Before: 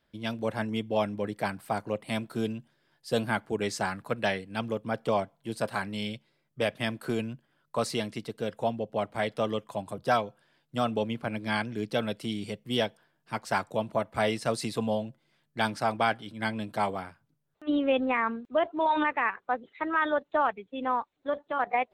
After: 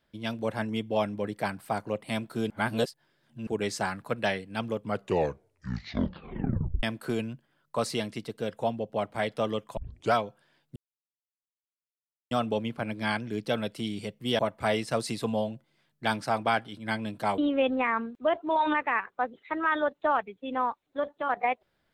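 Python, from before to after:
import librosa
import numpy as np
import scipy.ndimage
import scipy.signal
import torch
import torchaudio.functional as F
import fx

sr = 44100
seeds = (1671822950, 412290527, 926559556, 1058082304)

y = fx.edit(x, sr, fx.reverse_span(start_s=2.5, length_s=0.97),
    fx.tape_stop(start_s=4.76, length_s=2.07),
    fx.tape_start(start_s=9.77, length_s=0.37),
    fx.insert_silence(at_s=10.76, length_s=1.55),
    fx.cut(start_s=12.84, length_s=1.09),
    fx.cut(start_s=16.92, length_s=0.76), tone=tone)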